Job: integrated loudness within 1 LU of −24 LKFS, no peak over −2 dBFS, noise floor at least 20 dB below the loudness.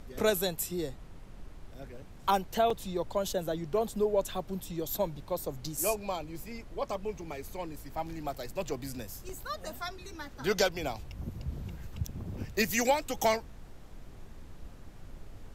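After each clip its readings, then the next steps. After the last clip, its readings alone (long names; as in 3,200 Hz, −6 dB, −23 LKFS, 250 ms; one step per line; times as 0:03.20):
number of dropouts 3; longest dropout 4.0 ms; background noise floor −49 dBFS; target noise floor −54 dBFS; integrated loudness −33.5 LKFS; sample peak −14.5 dBFS; target loudness −24.0 LKFS
→ repair the gap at 0:02.70/0:05.77/0:09.29, 4 ms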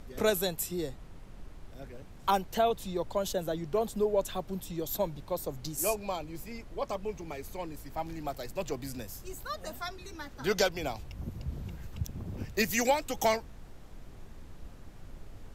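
number of dropouts 0; background noise floor −49 dBFS; target noise floor −54 dBFS
→ noise reduction from a noise print 6 dB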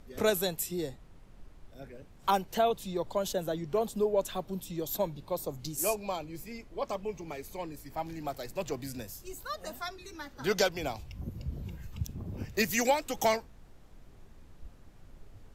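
background noise floor −54 dBFS; integrated loudness −33.5 LKFS; sample peak −15.0 dBFS; target loudness −24.0 LKFS
→ level +9.5 dB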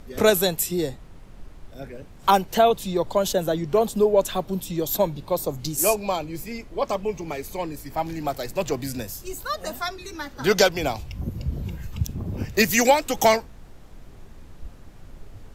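integrated loudness −24.0 LKFS; sample peak −5.5 dBFS; background noise floor −45 dBFS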